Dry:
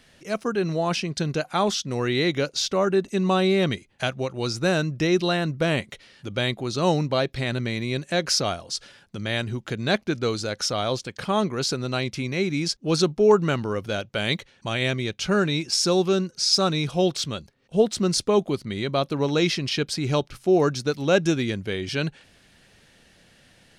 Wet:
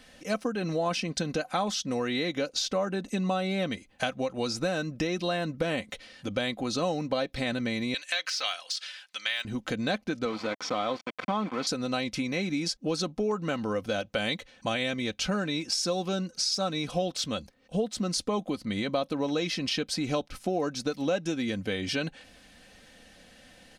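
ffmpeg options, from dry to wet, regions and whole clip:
ffmpeg -i in.wav -filter_complex "[0:a]asettb=1/sr,asplit=3[link_01][link_02][link_03];[link_01]atrim=end=7.944[link_04];[link_02]atrim=start=7.94:end=9.45,asetpts=PTS-STARTPTS,afade=type=in:duration=0.004:curve=qsin,afade=type=out:start_time=1.506:duration=0.004:curve=qsin,deesser=0.75,highpass=1300,equalizer=frequency=3000:width_type=o:width=2:gain=9[link_05];[link_03]atrim=start=9.446[link_06];[link_04][link_05]acrossfade=duration=0.004:curve1=hsin:curve2=qsin[link_07];[link_07][link_06]acrossfade=duration=0.004:curve1=qsin:curve2=hsin,asettb=1/sr,asplit=3[link_08][link_09][link_10];[link_08]atrim=end=10.254[link_11];[link_09]atrim=start=10.25:end=11.67,asetpts=PTS-STARTPTS,afade=type=in:duration=0.004:curve=qsin,afade=type=out:start_time=1.416:duration=0.004:curve=qsin,aeval=exprs='val(0)*gte(abs(val(0)),0.0335)':channel_layout=same,highpass=180,lowpass=2900,aecho=1:1:0.9:0.33,atrim=end_sample=62622[link_12];[link_10]atrim=start=11.666[link_13];[link_11][link_12]acrossfade=duration=0.004:curve1=hsin:curve2=qsin[link_14];[link_14][link_13]acrossfade=duration=0.004:curve1=qsin:curve2=hsin,aecho=1:1:3.9:0.61,acompressor=threshold=-27dB:ratio=5,equalizer=frequency=650:width=5.6:gain=7" out.wav

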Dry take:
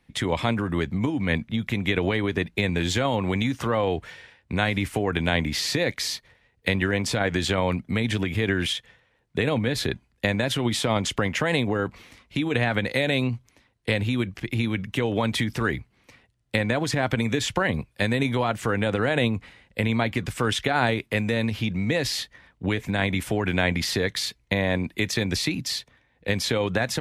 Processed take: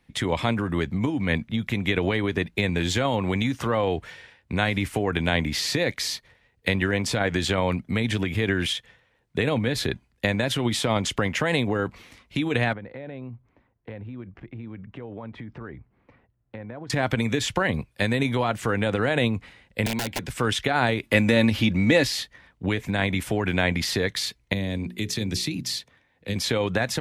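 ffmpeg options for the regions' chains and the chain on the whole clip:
ffmpeg -i in.wav -filter_complex "[0:a]asettb=1/sr,asplit=3[link_01][link_02][link_03];[link_01]atrim=end=12.734[link_04];[link_02]atrim=start=12.73:end=16.9,asetpts=PTS-STARTPTS,afade=type=in:duration=0.004:curve=qsin,afade=type=out:start_time=4.166:duration=0.004:curve=qsin,lowpass=1300,acompressor=threshold=-44dB:ratio=2:attack=3.2:release=140:knee=1:detection=peak[link_05];[link_03]atrim=start=16.896[link_06];[link_04][link_05]acrossfade=duration=0.004:curve1=hsin:curve2=qsin[link_07];[link_07][link_06]acrossfade=duration=0.004:curve1=qsin:curve2=hsin,asettb=1/sr,asplit=3[link_08][link_09][link_10];[link_08]atrim=end=19.864[link_11];[link_09]atrim=start=19.86:end=20.3,asetpts=PTS-STARTPTS,afade=type=in:duration=0.004:curve=qsin,afade=type=out:start_time=0.436:duration=0.004:curve=qsin,acrossover=split=220|1100|3000[link_12][link_13][link_14][link_15];[link_12]acompressor=threshold=-35dB:ratio=3[link_16];[link_13]acompressor=threshold=-26dB:ratio=3[link_17];[link_14]acompressor=threshold=-35dB:ratio=3[link_18];[link_15]acompressor=threshold=-41dB:ratio=3[link_19];[link_16][link_17][link_18][link_19]amix=inputs=4:normalize=0,aeval=exprs='(mod(11.2*val(0)+1,2)-1)/11.2':channel_layout=same,asuperstop=centerf=1200:order=4:qfactor=4.9[link_20];[link_10]atrim=start=20.296[link_21];[link_11][link_20]acrossfade=duration=0.004:curve1=hsin:curve2=qsin[link_22];[link_22][link_21]acrossfade=duration=0.004:curve1=qsin:curve2=hsin,asettb=1/sr,asplit=3[link_23][link_24][link_25];[link_23]atrim=end=21.034[link_26];[link_24]atrim=start=21.03:end=22.05,asetpts=PTS-STARTPTS,afade=type=in:duration=0.004:curve=qsin,afade=type=out:start_time=1.016:duration=0.004:curve=qsin,acontrast=32,aecho=1:1:3.5:0.39,atrim=end_sample=44982[link_27];[link_25]atrim=start=22.046[link_28];[link_26][link_27]acrossfade=duration=0.004:curve1=hsin:curve2=qsin[link_29];[link_29][link_28]acrossfade=duration=0.004:curve1=qsin:curve2=hsin,asettb=1/sr,asplit=3[link_30][link_31][link_32];[link_30]atrim=end=24.534[link_33];[link_31]atrim=start=24.53:end=26.36,asetpts=PTS-STARTPTS,afade=type=in:duration=0.004:curve=qsin,afade=type=out:start_time=1.826:duration=0.004:curve=qsin,highpass=63,acrossover=split=400|3000[link_34][link_35][link_36];[link_35]acompressor=threshold=-44dB:ratio=3:attack=3.2:release=140:knee=2.83:detection=peak[link_37];[link_34][link_37][link_36]amix=inputs=3:normalize=0,bandreject=frequency=60:width_type=h:width=6,bandreject=frequency=120:width_type=h:width=6,bandreject=frequency=180:width_type=h:width=6,bandreject=frequency=240:width_type=h:width=6,bandreject=frequency=300:width_type=h:width=6,bandreject=frequency=360:width_type=h:width=6,bandreject=frequency=420:width_type=h:width=6,bandreject=frequency=480:width_type=h:width=6[link_38];[link_32]atrim=start=26.356[link_39];[link_33][link_38]acrossfade=duration=0.004:curve1=hsin:curve2=qsin[link_40];[link_40][link_39]acrossfade=duration=0.004:curve1=qsin:curve2=hsin" out.wav

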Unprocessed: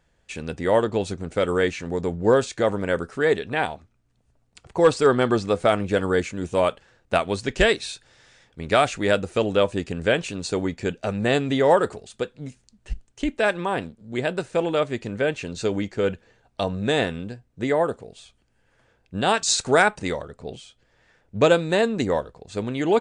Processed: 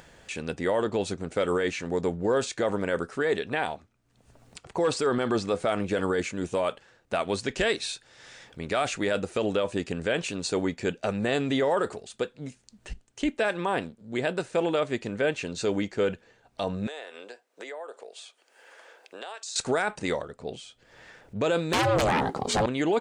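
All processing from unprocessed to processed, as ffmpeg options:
ffmpeg -i in.wav -filter_complex "[0:a]asettb=1/sr,asplit=3[link_01][link_02][link_03];[link_01]atrim=end=16.874[link_04];[link_02]atrim=start=16.87:end=19.56,asetpts=PTS-STARTPTS,afade=type=in:duration=0.004:curve=qsin,afade=type=out:start_time=2.686:duration=0.004:curve=qsin,highpass=frequency=430:width=0.5412,highpass=frequency=430:width=1.3066,acompressor=threshold=-37dB:ratio=5:attack=3.2:release=140:knee=1:detection=peak[link_05];[link_03]atrim=start=19.556[link_06];[link_04][link_05]acrossfade=duration=0.004:curve1=hsin:curve2=qsin[link_07];[link_07][link_06]acrossfade=duration=0.004:curve1=qsin:curve2=hsin,asettb=1/sr,asplit=3[link_08][link_09][link_10];[link_08]atrim=end=21.734[link_11];[link_09]atrim=start=21.73:end=22.66,asetpts=PTS-STARTPTS,afade=type=in:duration=0.004:curve=qsin,afade=type=out:start_time=0.926:duration=0.004:curve=qsin,acompressor=threshold=-23dB:ratio=6:attack=3.2:release=140:knee=1:detection=peak,aeval=exprs='0.282*sin(PI/2*6.31*val(0)/0.282)':channel_layout=same,aeval=exprs='val(0)*sin(2*PI*330*n/s)':channel_layout=same[link_12];[link_10]atrim=start=22.656[link_13];[link_11][link_12]acrossfade=duration=0.004:curve1=hsin:curve2=qsin[link_14];[link_14][link_13]acrossfade=duration=0.004:curve1=qsin:curve2=hsin,lowshelf=frequency=110:gain=-11,acompressor=mode=upward:threshold=-39dB:ratio=2.5,alimiter=limit=-16.5dB:level=0:latency=1:release=27" out.wav

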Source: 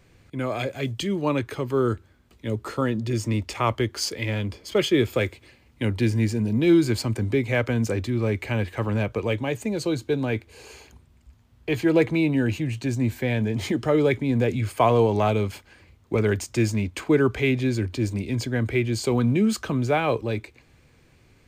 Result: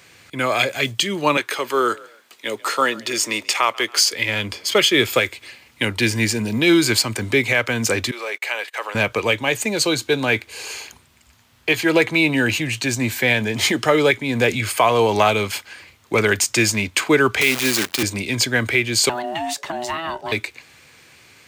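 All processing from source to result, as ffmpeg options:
ffmpeg -i in.wav -filter_complex "[0:a]asettb=1/sr,asplit=3[link_01][link_02][link_03];[link_01]atrim=end=1.374[link_04];[link_02]atrim=start=1.37:end=4.13,asetpts=PTS-STARTPTS,afade=type=in:duration=0.004:curve=qsin,afade=type=out:start_time=2.756:duration=0.004:curve=qsin,highpass=350,asplit=3[link_05][link_06][link_07];[link_06]adelay=138,afreqshift=48,volume=-23dB[link_08];[link_07]adelay=276,afreqshift=96,volume=-32.6dB[link_09];[link_05][link_08][link_09]amix=inputs=3:normalize=0,atrim=end_sample=121716[link_10];[link_03]atrim=start=4.126[link_11];[link_04][link_10]acrossfade=duration=0.004:curve1=hsin:curve2=qsin[link_12];[link_12][link_11]acrossfade=duration=0.004:curve1=qsin:curve2=hsin,asettb=1/sr,asplit=3[link_13][link_14][link_15];[link_13]atrim=end=8.114[link_16];[link_14]atrim=start=8.11:end=8.95,asetpts=PTS-STARTPTS,afade=type=in:duration=0.004:curve=qsin,afade=type=out:start_time=0.836:duration=0.004:curve=qsin,highpass=frequency=460:width=0.5412,highpass=frequency=460:width=1.3066,acompressor=threshold=-42dB:ratio=1.5:attack=3.2:release=140:knee=1:detection=peak,agate=range=-27dB:threshold=-45dB:ratio=16:release=100:detection=peak[link_17];[link_15]atrim=start=8.946[link_18];[link_16][link_17]acrossfade=duration=0.004:curve1=hsin:curve2=qsin[link_19];[link_19][link_18]acrossfade=duration=0.004:curve1=qsin:curve2=hsin,asettb=1/sr,asplit=3[link_20][link_21][link_22];[link_20]atrim=end=17.414[link_23];[link_21]atrim=start=17.41:end=18.03,asetpts=PTS-STARTPTS,afade=type=in:duration=0.004:curve=qsin,afade=type=out:start_time=0.616:duration=0.004:curve=qsin,highpass=frequency=150:width=0.5412,highpass=frequency=150:width=1.3066,acrusher=bits=6:dc=4:mix=0:aa=0.000001[link_24];[link_22]atrim=start=18.026[link_25];[link_23][link_24]acrossfade=duration=0.004:curve1=hsin:curve2=qsin[link_26];[link_26][link_25]acrossfade=duration=0.004:curve1=qsin:curve2=hsin,asettb=1/sr,asplit=3[link_27][link_28][link_29];[link_27]atrim=end=19.094[link_30];[link_28]atrim=start=19.09:end=20.32,asetpts=PTS-STARTPTS,afade=type=in:duration=0.004:curve=qsin,afade=type=out:start_time=1.226:duration=0.004:curve=qsin,acrossover=split=230|640[link_31][link_32][link_33];[link_31]acompressor=threshold=-32dB:ratio=4[link_34];[link_32]acompressor=threshold=-38dB:ratio=4[link_35];[link_33]acompressor=threshold=-40dB:ratio=4[link_36];[link_34][link_35][link_36]amix=inputs=3:normalize=0,aeval=exprs='val(0)*sin(2*PI*490*n/s)':channel_layout=same[link_37];[link_29]atrim=start=20.316[link_38];[link_30][link_37]acrossfade=duration=0.004:curve1=hsin:curve2=qsin[link_39];[link_39][link_38]acrossfade=duration=0.004:curve1=qsin:curve2=hsin,highpass=92,tiltshelf=frequency=690:gain=-8.5,alimiter=limit=-12.5dB:level=0:latency=1:release=309,volume=8dB" out.wav

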